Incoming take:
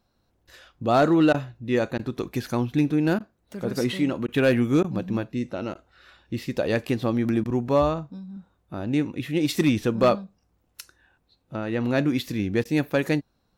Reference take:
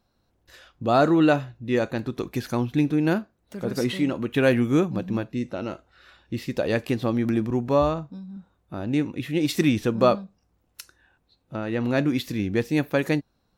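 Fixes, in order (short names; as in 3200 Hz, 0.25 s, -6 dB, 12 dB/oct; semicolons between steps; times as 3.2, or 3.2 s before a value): clip repair -11.5 dBFS; interpolate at 1.33/1.98/3.19/4.27/4.83/5.74/7.44/12.64, 11 ms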